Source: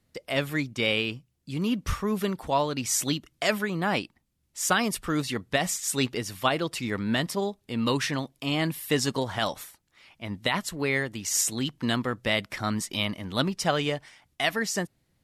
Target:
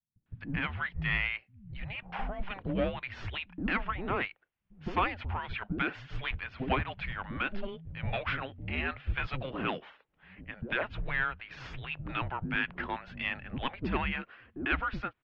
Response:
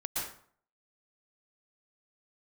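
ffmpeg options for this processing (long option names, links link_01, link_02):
-filter_complex "[0:a]aeval=exprs='(tanh(6.31*val(0)+0.25)-tanh(0.25))/6.31':channel_layout=same,acrossover=split=210|680[link_01][link_02][link_03];[link_02]adelay=160[link_04];[link_03]adelay=260[link_05];[link_01][link_04][link_05]amix=inputs=3:normalize=0,highpass=frequency=340:width_type=q:width=0.5412,highpass=frequency=340:width_type=q:width=1.307,lowpass=frequency=3300:width_type=q:width=0.5176,lowpass=frequency=3300:width_type=q:width=0.7071,lowpass=frequency=3300:width_type=q:width=1.932,afreqshift=-390"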